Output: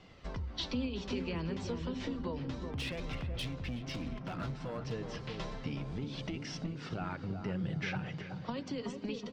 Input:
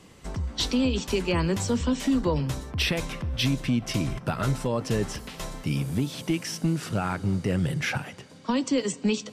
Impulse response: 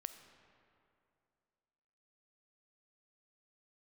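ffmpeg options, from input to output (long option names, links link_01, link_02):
-filter_complex "[0:a]lowpass=frequency=4900:width=0.5412,lowpass=frequency=4900:width=1.3066,bandreject=frequency=51.03:width_type=h:width=4,bandreject=frequency=102.06:width_type=h:width=4,bandreject=frequency=153.09:width_type=h:width=4,bandreject=frequency=204.12:width_type=h:width=4,bandreject=frequency=255.15:width_type=h:width=4,bandreject=frequency=306.18:width_type=h:width=4,bandreject=frequency=357.21:width_type=h:width=4,bandreject=frequency=408.24:width_type=h:width=4,acompressor=threshold=-31dB:ratio=6,flanger=delay=1.4:depth=5.2:regen=53:speed=0.31:shape=sinusoidal,asettb=1/sr,asplit=3[link_01][link_02][link_03];[link_01]atrim=end=2.684[link_04];[link_02]atrim=start=2.68:end=4.92,asetpts=PTS-STARTPTS,afade=type=in:duration=0.004:curve=qsin,afade=type=out:start_time=2.236:duration=0.004:curve=qsin,asoftclip=type=hard:threshold=-35dB[link_05];[link_03]atrim=start=4.916[link_06];[link_04][link_05]acrossfade=duration=0.004:curve1=hsin:curve2=qsin[link_07];[link_07][link_06]acrossfade=duration=0.004:curve1=qsin:curve2=hsin,asplit=2[link_08][link_09];[link_09]adelay=374,lowpass=frequency=850:poles=1,volume=-4.5dB,asplit=2[link_10][link_11];[link_11]adelay=374,lowpass=frequency=850:poles=1,volume=0.53,asplit=2[link_12][link_13];[link_13]adelay=374,lowpass=frequency=850:poles=1,volume=0.53,asplit=2[link_14][link_15];[link_15]adelay=374,lowpass=frequency=850:poles=1,volume=0.53,asplit=2[link_16][link_17];[link_17]adelay=374,lowpass=frequency=850:poles=1,volume=0.53,asplit=2[link_18][link_19];[link_19]adelay=374,lowpass=frequency=850:poles=1,volume=0.53,asplit=2[link_20][link_21];[link_21]adelay=374,lowpass=frequency=850:poles=1,volume=0.53[link_22];[link_08][link_10][link_12][link_14][link_16][link_18][link_20][link_22]amix=inputs=8:normalize=0"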